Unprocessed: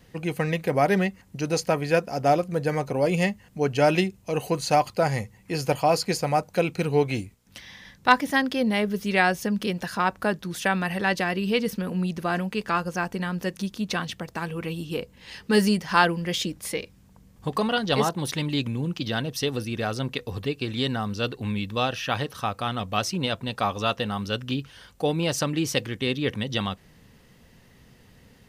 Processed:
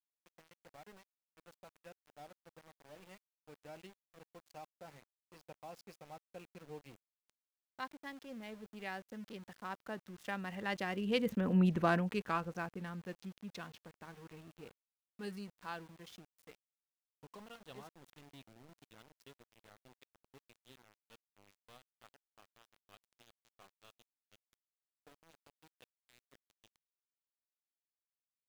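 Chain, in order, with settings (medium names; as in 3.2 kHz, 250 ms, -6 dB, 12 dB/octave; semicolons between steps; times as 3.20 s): local Wiener filter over 9 samples; Doppler pass-by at 11.67 s, 12 m/s, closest 3 m; small samples zeroed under -53 dBFS; trim -1.5 dB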